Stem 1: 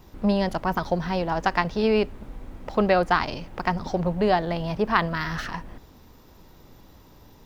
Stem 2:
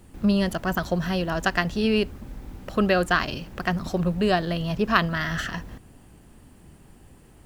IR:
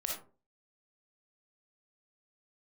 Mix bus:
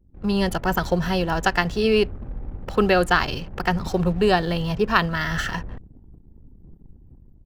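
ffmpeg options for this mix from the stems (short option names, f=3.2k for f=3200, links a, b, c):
-filter_complex "[0:a]lowshelf=f=71:g=11.5,highshelf=f=5.4k:g=8.5,volume=-15dB[a];[1:a]adelay=1.8,volume=-6dB[b];[a][b]amix=inputs=2:normalize=0,anlmdn=0.00251,dynaudnorm=f=120:g=5:m=9dB"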